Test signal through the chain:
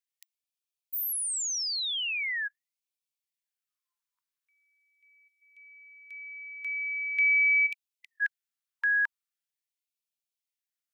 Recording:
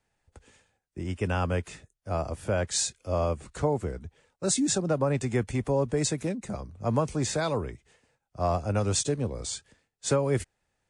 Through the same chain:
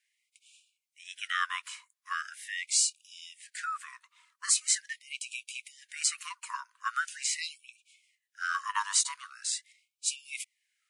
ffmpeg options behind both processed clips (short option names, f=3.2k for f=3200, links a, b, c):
-af "afreqshift=400,afftfilt=real='re*gte(b*sr/1024,910*pow(2300/910,0.5+0.5*sin(2*PI*0.42*pts/sr)))':imag='im*gte(b*sr/1024,910*pow(2300/910,0.5+0.5*sin(2*PI*0.42*pts/sr)))':win_size=1024:overlap=0.75,volume=2.5dB"